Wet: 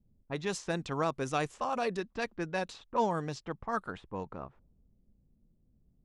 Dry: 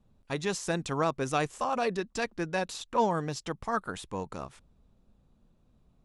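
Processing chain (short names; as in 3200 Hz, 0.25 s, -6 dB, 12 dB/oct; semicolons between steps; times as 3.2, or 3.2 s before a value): low-pass opened by the level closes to 330 Hz, open at -26.5 dBFS; gain -3 dB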